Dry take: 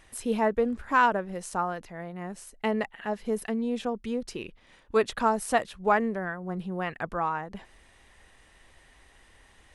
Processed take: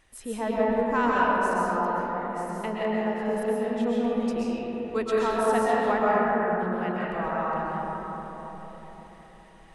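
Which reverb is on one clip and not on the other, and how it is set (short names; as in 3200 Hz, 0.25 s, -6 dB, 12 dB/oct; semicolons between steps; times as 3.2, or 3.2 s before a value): digital reverb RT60 4.6 s, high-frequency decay 0.3×, pre-delay 90 ms, DRR -7 dB; gain -6 dB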